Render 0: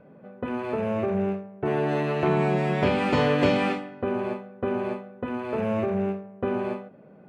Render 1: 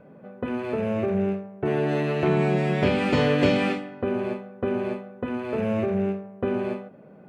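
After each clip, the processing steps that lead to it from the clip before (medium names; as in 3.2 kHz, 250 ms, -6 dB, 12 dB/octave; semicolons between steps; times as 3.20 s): dynamic bell 970 Hz, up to -6 dB, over -40 dBFS, Q 1.4; trim +2 dB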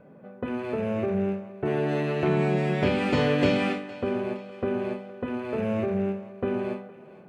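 thinning echo 463 ms, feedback 53%, level -18 dB; trim -2 dB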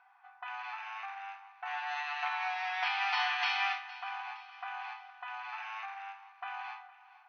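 brick-wall FIR band-pass 700–6300 Hz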